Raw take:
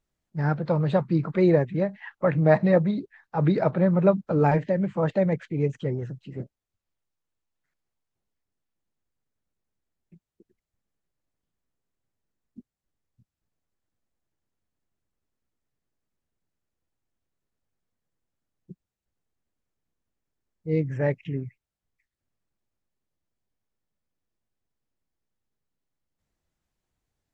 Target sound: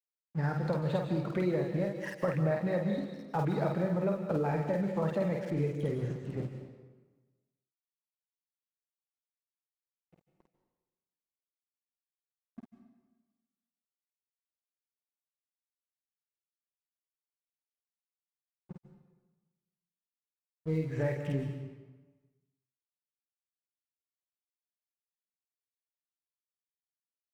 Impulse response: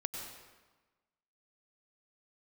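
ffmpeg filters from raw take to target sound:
-filter_complex "[0:a]aeval=exprs='sgn(val(0))*max(abs(val(0))-0.00376,0)':channel_layout=same,acompressor=threshold=-29dB:ratio=6,asplit=2[link_01][link_02];[1:a]atrim=start_sample=2205,highshelf=frequency=2800:gain=10,adelay=50[link_03];[link_02][link_03]afir=irnorm=-1:irlink=0,volume=-4.5dB[link_04];[link_01][link_04]amix=inputs=2:normalize=0"

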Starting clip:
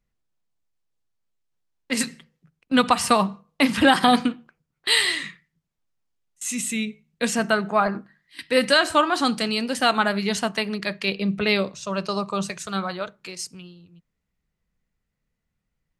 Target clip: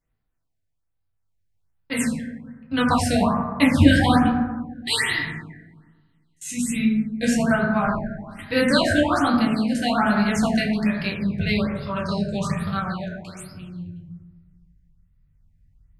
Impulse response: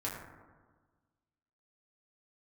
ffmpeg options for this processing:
-filter_complex "[0:a]asubboost=boost=11.5:cutoff=120,tremolo=f=0.57:d=0.36[link_01];[1:a]atrim=start_sample=2205[link_02];[link_01][link_02]afir=irnorm=-1:irlink=0,afftfilt=real='re*(1-between(b*sr/1024,980*pow(7600/980,0.5+0.5*sin(2*PI*1.2*pts/sr))/1.41,980*pow(7600/980,0.5+0.5*sin(2*PI*1.2*pts/sr))*1.41))':imag='im*(1-between(b*sr/1024,980*pow(7600/980,0.5+0.5*sin(2*PI*1.2*pts/sr))/1.41,980*pow(7600/980,0.5+0.5*sin(2*PI*1.2*pts/sr))*1.41))':win_size=1024:overlap=0.75"

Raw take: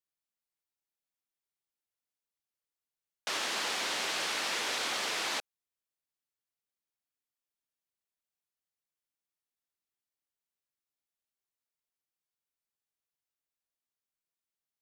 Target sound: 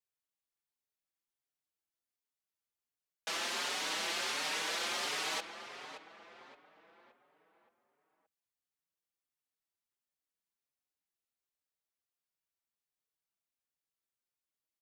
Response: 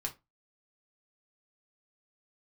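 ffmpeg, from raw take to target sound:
-filter_complex "[0:a]asplit=2[link_01][link_02];[link_02]adelay=572,lowpass=frequency=2200:poles=1,volume=-8.5dB,asplit=2[link_03][link_04];[link_04]adelay=572,lowpass=frequency=2200:poles=1,volume=0.48,asplit=2[link_05][link_06];[link_06]adelay=572,lowpass=frequency=2200:poles=1,volume=0.48,asplit=2[link_07][link_08];[link_08]adelay=572,lowpass=frequency=2200:poles=1,volume=0.48,asplit=2[link_09][link_10];[link_10]adelay=572,lowpass=frequency=2200:poles=1,volume=0.48[link_11];[link_01][link_03][link_05][link_07][link_09][link_11]amix=inputs=6:normalize=0,asplit=2[link_12][link_13];[link_13]adelay=5.2,afreqshift=1.4[link_14];[link_12][link_14]amix=inputs=2:normalize=1"

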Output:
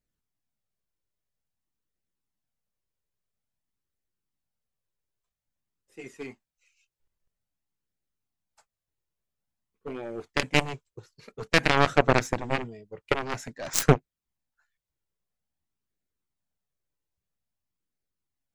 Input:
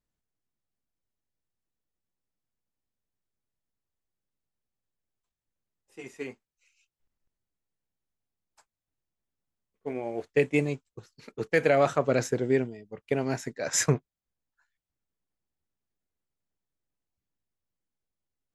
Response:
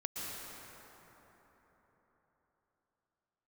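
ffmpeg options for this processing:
-af "flanger=delay=0.4:depth=1.8:regen=-42:speed=0.5:shape=triangular,aeval=exprs='0.237*(cos(1*acos(clip(val(0)/0.237,-1,1)))-cos(1*PI/2))+0.00944*(cos(6*acos(clip(val(0)/0.237,-1,1)))-cos(6*PI/2))+0.0531*(cos(7*acos(clip(val(0)/0.237,-1,1)))-cos(7*PI/2))':channel_layout=same,volume=8.5dB"

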